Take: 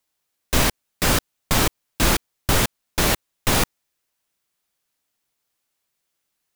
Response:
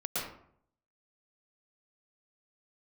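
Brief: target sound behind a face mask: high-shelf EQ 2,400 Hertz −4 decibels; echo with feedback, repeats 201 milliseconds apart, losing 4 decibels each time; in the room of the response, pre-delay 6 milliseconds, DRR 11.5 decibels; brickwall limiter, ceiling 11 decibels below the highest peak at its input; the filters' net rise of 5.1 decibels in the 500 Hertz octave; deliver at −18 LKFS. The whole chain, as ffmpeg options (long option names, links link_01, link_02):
-filter_complex "[0:a]equalizer=frequency=500:width_type=o:gain=6.5,alimiter=limit=-13.5dB:level=0:latency=1,aecho=1:1:201|402|603|804|1005|1206|1407|1608|1809:0.631|0.398|0.25|0.158|0.0994|0.0626|0.0394|0.0249|0.0157,asplit=2[link_01][link_02];[1:a]atrim=start_sample=2205,adelay=6[link_03];[link_02][link_03]afir=irnorm=-1:irlink=0,volume=-17dB[link_04];[link_01][link_04]amix=inputs=2:normalize=0,highshelf=frequency=2400:gain=-4,volume=8.5dB"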